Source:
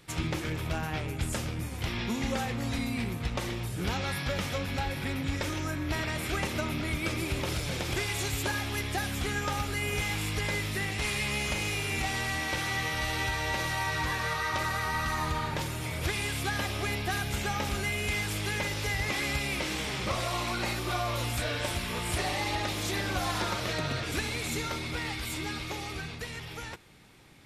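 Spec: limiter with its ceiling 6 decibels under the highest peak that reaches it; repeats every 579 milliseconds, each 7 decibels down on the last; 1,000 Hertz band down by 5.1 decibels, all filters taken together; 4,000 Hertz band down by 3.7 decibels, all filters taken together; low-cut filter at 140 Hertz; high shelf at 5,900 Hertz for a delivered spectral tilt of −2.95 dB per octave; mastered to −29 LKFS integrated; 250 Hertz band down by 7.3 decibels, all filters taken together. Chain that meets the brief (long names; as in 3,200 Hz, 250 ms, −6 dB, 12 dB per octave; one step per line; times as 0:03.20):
high-pass filter 140 Hz
parametric band 250 Hz −9 dB
parametric band 1,000 Hz −6 dB
parametric band 4,000 Hz −7 dB
high-shelf EQ 5,900 Hz +7 dB
brickwall limiter −25.5 dBFS
repeating echo 579 ms, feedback 45%, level −7 dB
level +5.5 dB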